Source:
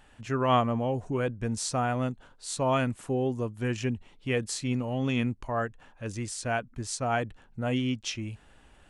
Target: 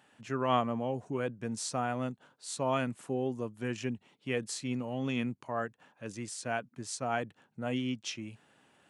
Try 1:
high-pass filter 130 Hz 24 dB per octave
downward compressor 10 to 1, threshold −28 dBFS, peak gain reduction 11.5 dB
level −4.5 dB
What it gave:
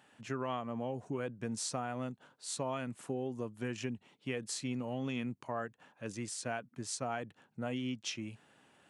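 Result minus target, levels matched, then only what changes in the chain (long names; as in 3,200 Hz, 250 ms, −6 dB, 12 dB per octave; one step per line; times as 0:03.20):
downward compressor: peak gain reduction +11.5 dB
remove: downward compressor 10 to 1, threshold −28 dBFS, peak gain reduction 11.5 dB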